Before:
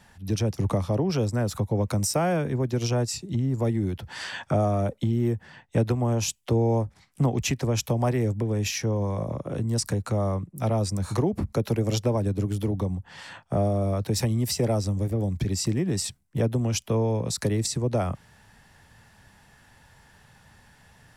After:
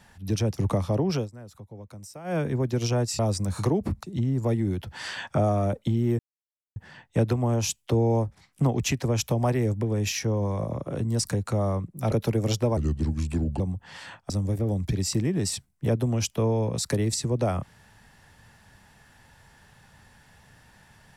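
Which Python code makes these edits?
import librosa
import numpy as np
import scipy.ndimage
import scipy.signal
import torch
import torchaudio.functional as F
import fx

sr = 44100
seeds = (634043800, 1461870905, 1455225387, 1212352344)

y = fx.edit(x, sr, fx.fade_down_up(start_s=1.15, length_s=1.23, db=-18.0, fade_s=0.14),
    fx.insert_silence(at_s=5.35, length_s=0.57),
    fx.move(start_s=10.71, length_s=0.84, to_s=3.19),
    fx.speed_span(start_s=12.2, length_s=0.63, speed=0.76),
    fx.cut(start_s=13.53, length_s=1.29), tone=tone)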